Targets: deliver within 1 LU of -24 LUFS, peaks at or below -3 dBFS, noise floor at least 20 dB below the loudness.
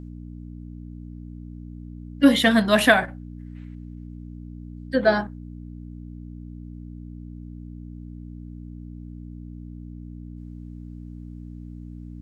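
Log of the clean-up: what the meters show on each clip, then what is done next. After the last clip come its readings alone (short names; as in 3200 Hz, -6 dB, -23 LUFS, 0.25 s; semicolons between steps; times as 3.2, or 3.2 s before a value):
hum 60 Hz; harmonics up to 300 Hz; hum level -36 dBFS; loudness -19.5 LUFS; peak -1.5 dBFS; loudness target -24.0 LUFS
-> de-hum 60 Hz, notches 5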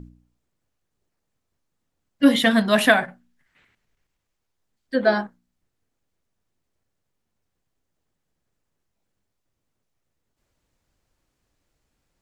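hum none; loudness -19.5 LUFS; peak -1.5 dBFS; loudness target -24.0 LUFS
-> gain -4.5 dB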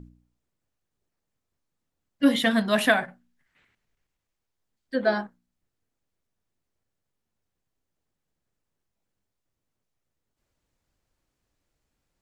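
loudness -24.0 LUFS; peak -6.0 dBFS; noise floor -83 dBFS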